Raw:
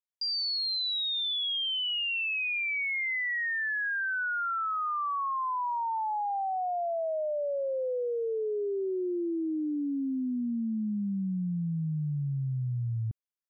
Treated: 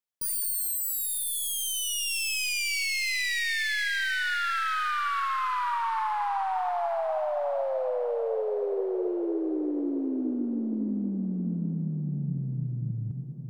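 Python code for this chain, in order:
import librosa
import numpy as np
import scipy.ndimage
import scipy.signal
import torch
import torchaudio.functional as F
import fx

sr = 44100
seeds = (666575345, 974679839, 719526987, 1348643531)

p1 = fx.tracing_dist(x, sr, depth_ms=0.18)
p2 = fx.low_shelf(p1, sr, hz=71.0, db=-11.5)
p3 = p2 + fx.echo_diffused(p2, sr, ms=715, feedback_pct=47, wet_db=-6.5, dry=0)
y = F.gain(torch.from_numpy(p3), 1.5).numpy()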